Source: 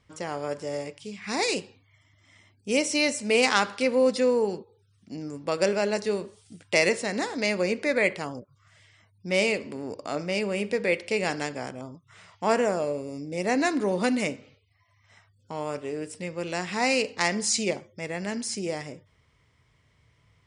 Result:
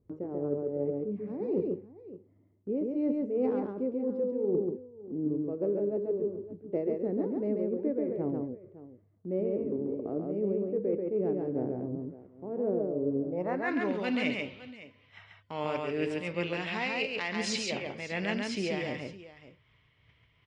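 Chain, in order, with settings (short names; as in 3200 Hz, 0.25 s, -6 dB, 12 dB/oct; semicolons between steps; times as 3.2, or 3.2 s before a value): low-pass sweep 380 Hz -> 3000 Hz, 13.1–13.83; reverse; compressor 6:1, threshold -32 dBFS, peak gain reduction 15.5 dB; reverse; tremolo triangle 2.7 Hz, depth 65%; gate -60 dBFS, range -8 dB; on a send: tapped delay 0.137/0.56 s -3/-16.5 dB; on the sum: gain +5.5 dB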